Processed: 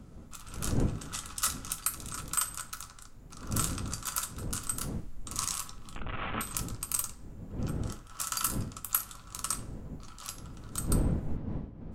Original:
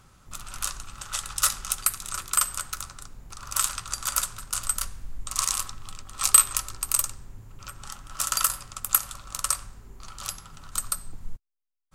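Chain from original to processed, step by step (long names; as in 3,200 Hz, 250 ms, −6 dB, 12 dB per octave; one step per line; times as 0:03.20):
0:05.95–0:06.41: linear delta modulator 16 kbit/s, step −22.5 dBFS
wind on the microphone 180 Hz −30 dBFS
reverb whose tail is shaped and stops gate 90 ms falling, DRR 8.5 dB
level −8 dB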